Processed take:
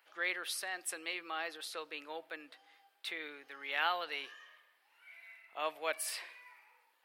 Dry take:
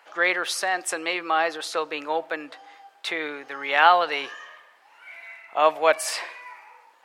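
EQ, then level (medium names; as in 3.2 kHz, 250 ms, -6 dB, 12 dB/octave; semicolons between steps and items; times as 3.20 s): tone controls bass -14 dB, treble +4 dB; peaking EQ 790 Hz -15 dB 2.7 oct; peaking EQ 6.7 kHz -13.5 dB 1.1 oct; -4.5 dB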